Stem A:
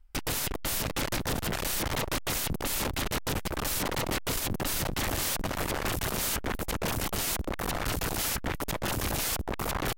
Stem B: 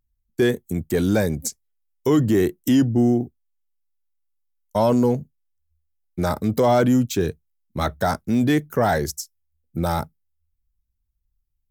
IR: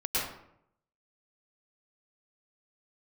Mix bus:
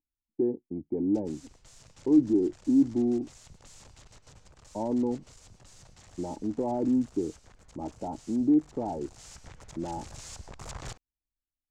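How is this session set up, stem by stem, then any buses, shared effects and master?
8.98 s -15.5 dB -> 9.41 s -8 dB, 1.00 s, send -22.5 dB, FFT filter 120 Hz 0 dB, 290 Hz -16 dB, 1.4 kHz -12 dB, 3.2 kHz -7 dB, 7.3 kHz +5 dB, 14 kHz -28 dB; auto duck -8 dB, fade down 1.15 s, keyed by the second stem
-7.5 dB, 0.00 s, no send, cascade formant filter u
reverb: on, RT60 0.70 s, pre-delay 98 ms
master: peaking EQ 640 Hz +10 dB 3 oct

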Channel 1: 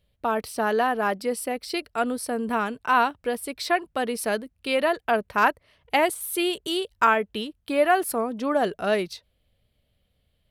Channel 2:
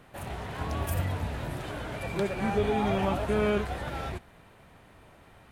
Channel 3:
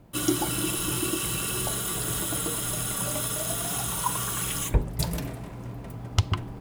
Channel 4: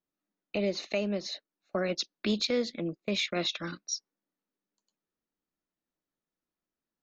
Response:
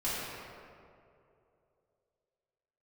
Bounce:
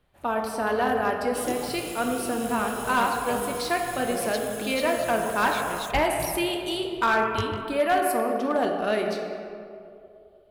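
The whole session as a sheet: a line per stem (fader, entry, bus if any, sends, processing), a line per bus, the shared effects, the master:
-5.5 dB, 0.00 s, send -6.5 dB, none
-17.0 dB, 0.00 s, no send, none
-7.0 dB, 1.20 s, no send, chorus 1.8 Hz, delay 18 ms, depth 4.2 ms
-7.0 dB, 2.35 s, no send, none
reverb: on, RT60 2.7 s, pre-delay 3 ms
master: overload inside the chain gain 16 dB

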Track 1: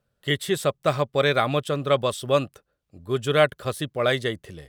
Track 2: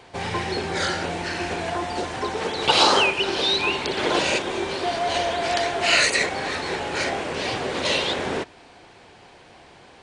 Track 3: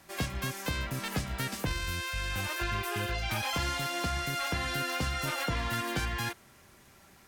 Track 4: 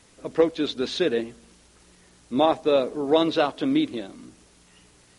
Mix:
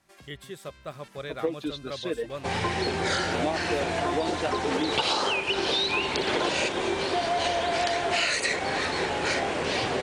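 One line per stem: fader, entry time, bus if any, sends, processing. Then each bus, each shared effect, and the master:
-16.5 dB, 0.00 s, no send, none
+0.5 dB, 2.30 s, no send, none
-9.0 dB, 0.00 s, no send, low-pass 11 kHz 12 dB/octave; compression 4:1, threshold -37 dBFS, peak gain reduction 9 dB; random flutter of the level, depth 65%
-8.0 dB, 1.05 s, no send, reverb removal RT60 1.5 s; comb 6.5 ms, depth 49%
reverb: none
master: compression 12:1, threshold -22 dBFS, peak gain reduction 11 dB

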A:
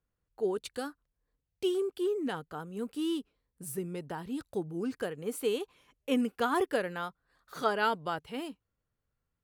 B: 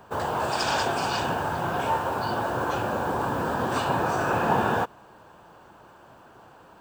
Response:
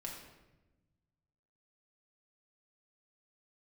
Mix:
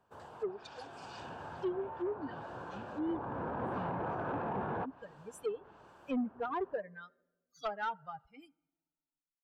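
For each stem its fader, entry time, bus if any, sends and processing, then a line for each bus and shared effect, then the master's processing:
+0.5 dB, 0.00 s, send -22 dB, expander on every frequency bin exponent 3
0.69 s -24 dB -> 1.30 s -17.5 dB -> 2.88 s -17.5 dB -> 3.57 s -7.5 dB, 0.00 s, no send, peak limiter -18 dBFS, peak gain reduction 8.5 dB; gain riding 0.5 s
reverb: on, RT60 1.1 s, pre-delay 4 ms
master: low-pass that closes with the level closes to 1.3 kHz, closed at -33.5 dBFS; saturation -28 dBFS, distortion -16 dB

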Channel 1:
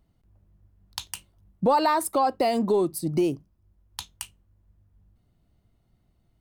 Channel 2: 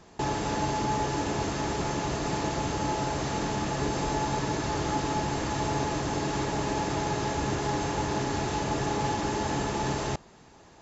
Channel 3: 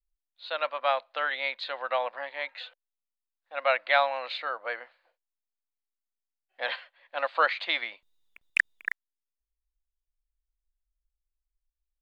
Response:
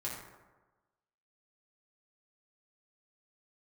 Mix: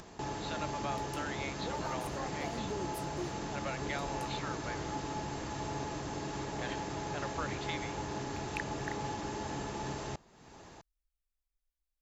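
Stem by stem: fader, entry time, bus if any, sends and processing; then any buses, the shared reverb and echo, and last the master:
-13.5 dB, 0.00 s, bus A, send -19 dB, none
-9.5 dB, 0.00 s, no bus, no send, upward compressor, threshold -32 dBFS
-3.0 dB, 0.00 s, bus A, no send, none
bus A: 0.0 dB, compression 2.5:1, threshold -43 dBFS, peak gain reduction 16 dB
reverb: on, RT60 1.2 s, pre-delay 4 ms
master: none

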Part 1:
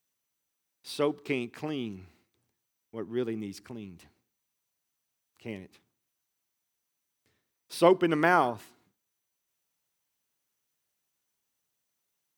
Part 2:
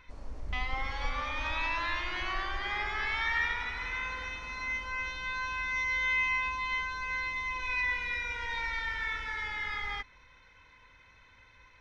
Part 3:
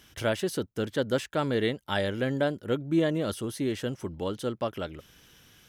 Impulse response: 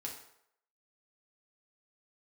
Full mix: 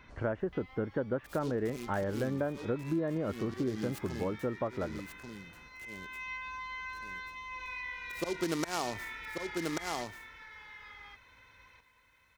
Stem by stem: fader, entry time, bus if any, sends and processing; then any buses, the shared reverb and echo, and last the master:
+1.5 dB, 0.40 s, no send, echo send -7 dB, slow attack 298 ms; delay time shaken by noise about 4.2 kHz, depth 0.076 ms
-0.5 dB, 0.00 s, no send, echo send -7.5 dB, high-pass 68 Hz 6 dB/octave; compression 2.5:1, threshold -44 dBFS, peak gain reduction 12 dB; auto duck -20 dB, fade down 1.60 s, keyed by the third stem
+0.5 dB, 0.00 s, no send, no echo send, low-pass 1.6 kHz 24 dB/octave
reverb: none
echo: delay 1137 ms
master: compression 4:1, threshold -30 dBFS, peak gain reduction 9.5 dB

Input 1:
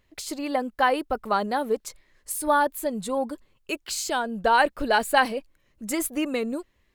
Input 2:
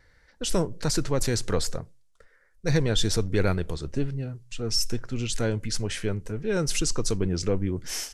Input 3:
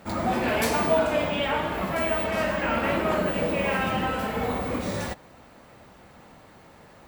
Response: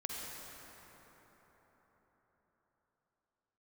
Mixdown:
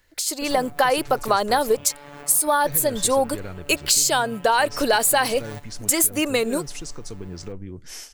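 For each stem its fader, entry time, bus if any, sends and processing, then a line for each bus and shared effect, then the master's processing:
+1.0 dB, 0.00 s, no send, peak limiter -14.5 dBFS, peak gain reduction 7.5 dB; tone controls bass -13 dB, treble +10 dB; level rider gain up to 11.5 dB
-5.5 dB, 0.00 s, no send, compression, threshold -24 dBFS, peak gain reduction 7 dB
-7.0 dB, 0.45 s, no send, compressor with a negative ratio -34 dBFS, ratio -1; robot voice 144 Hz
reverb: none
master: compression, threshold -15 dBFS, peak gain reduction 7 dB

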